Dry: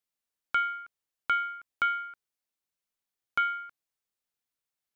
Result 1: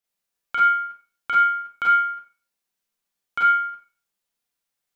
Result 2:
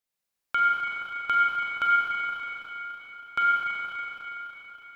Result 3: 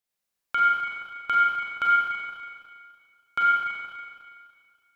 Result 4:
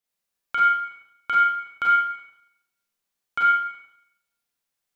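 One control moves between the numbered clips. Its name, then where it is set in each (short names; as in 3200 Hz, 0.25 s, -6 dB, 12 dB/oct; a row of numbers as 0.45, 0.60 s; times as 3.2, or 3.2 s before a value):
Schroeder reverb, RT60: 0.36, 4.5, 2.1, 0.77 s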